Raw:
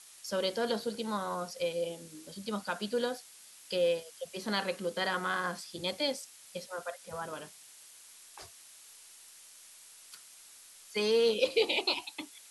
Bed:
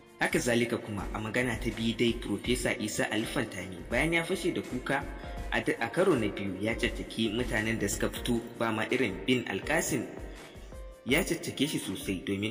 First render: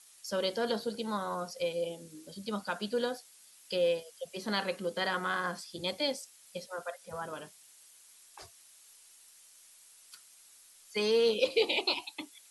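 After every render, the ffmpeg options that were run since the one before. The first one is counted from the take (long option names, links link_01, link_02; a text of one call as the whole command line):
ffmpeg -i in.wav -af "afftdn=noise_reduction=6:noise_floor=-55" out.wav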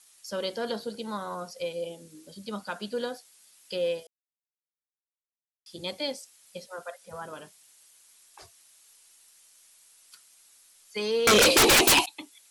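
ffmpeg -i in.wav -filter_complex "[0:a]asettb=1/sr,asplit=3[link_01][link_02][link_03];[link_01]atrim=end=11.274[link_04];[link_02]atrim=start=11.27:end=12.06,asetpts=PTS-STARTPTS,afade=type=in:duration=0.004:curve=qsin,afade=type=out:start_time=0.786:duration=0.004:curve=qsin,aeval=exprs='0.188*sin(PI/2*7.94*val(0)/0.188)':channel_layout=same[link_05];[link_03]atrim=start=12.056[link_06];[link_04][link_05]acrossfade=duration=0.004:curve1=hsin:curve2=qsin[link_07];[link_07][link_06]acrossfade=duration=0.004:curve1=qsin:curve2=hsin,asplit=3[link_08][link_09][link_10];[link_08]atrim=end=4.07,asetpts=PTS-STARTPTS,afade=type=out:start_time=4.066:duration=0.004:curve=hsin[link_11];[link_09]atrim=start=4.07:end=5.66,asetpts=PTS-STARTPTS,volume=0[link_12];[link_10]atrim=start=5.66,asetpts=PTS-STARTPTS,afade=type=in:duration=0.004:curve=hsin[link_13];[link_11][link_12][link_13]concat=n=3:v=0:a=1" out.wav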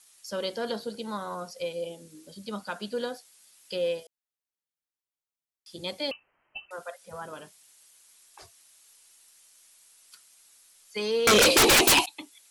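ffmpeg -i in.wav -filter_complex "[0:a]asettb=1/sr,asplit=3[link_01][link_02][link_03];[link_01]atrim=end=6.114[link_04];[link_02]atrim=start=6.11:end=6.71,asetpts=PTS-STARTPTS,afade=type=in:duration=0.004:curve=qsin,afade=type=out:start_time=0.596:duration=0.004:curve=qsin,lowpass=frequency=2700:width_type=q:width=0.5098,lowpass=frequency=2700:width_type=q:width=0.6013,lowpass=frequency=2700:width_type=q:width=0.9,lowpass=frequency=2700:width_type=q:width=2.563,afreqshift=-3200[link_05];[link_03]atrim=start=6.706[link_06];[link_04][link_05]acrossfade=duration=0.004:curve1=hsin:curve2=qsin[link_07];[link_07][link_06]acrossfade=duration=0.004:curve1=qsin:curve2=hsin" out.wav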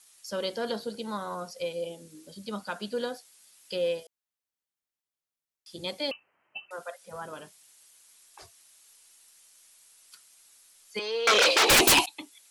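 ffmpeg -i in.wav -filter_complex "[0:a]asettb=1/sr,asplit=3[link_01][link_02][link_03];[link_01]atrim=end=5.854[link_04];[link_02]atrim=start=5.85:end=7.16,asetpts=PTS-STARTPTS,afade=type=in:duration=0.004:curve=qsin,afade=type=out:start_time=1.306:duration=0.004:curve=qsin,highpass=120[link_05];[link_03]atrim=start=7.156[link_06];[link_04][link_05]acrossfade=duration=0.004:curve1=hsin:curve2=qsin[link_07];[link_07][link_06]acrossfade=duration=0.004:curve1=qsin:curve2=hsin,asettb=1/sr,asplit=3[link_08][link_09][link_10];[link_08]atrim=end=10.994[link_11];[link_09]atrim=start=10.99:end=11.7,asetpts=PTS-STARTPTS,afade=type=in:duration=0.004:curve=qsin,afade=type=out:start_time=0.706:duration=0.004:curve=qsin,acrossover=split=430 6300:gain=0.0891 1 0.178[link_12][link_13][link_14];[link_12][link_13][link_14]amix=inputs=3:normalize=0[link_15];[link_10]atrim=start=11.696[link_16];[link_11][link_15]acrossfade=duration=0.004:curve1=hsin:curve2=qsin[link_17];[link_17][link_16]acrossfade=duration=0.004:curve1=qsin:curve2=hsin" out.wav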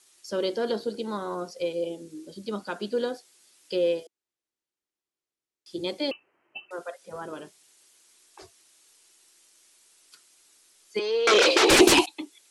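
ffmpeg -i in.wav -af "lowpass=9500,equalizer=frequency=350:width_type=o:width=0.71:gain=12" out.wav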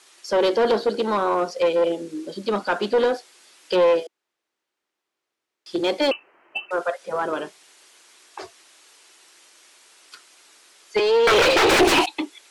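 ffmpeg -i in.wav -filter_complex "[0:a]aeval=exprs='clip(val(0),-1,0.0422)':channel_layout=same,asplit=2[link_01][link_02];[link_02]highpass=frequency=720:poles=1,volume=23dB,asoftclip=type=tanh:threshold=-5.5dB[link_03];[link_01][link_03]amix=inputs=2:normalize=0,lowpass=frequency=1700:poles=1,volume=-6dB" out.wav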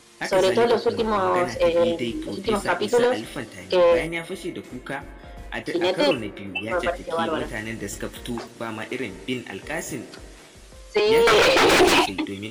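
ffmpeg -i in.wav -i bed.wav -filter_complex "[1:a]volume=-1dB[link_01];[0:a][link_01]amix=inputs=2:normalize=0" out.wav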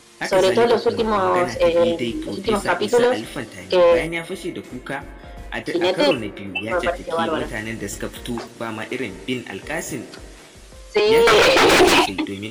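ffmpeg -i in.wav -af "volume=3dB" out.wav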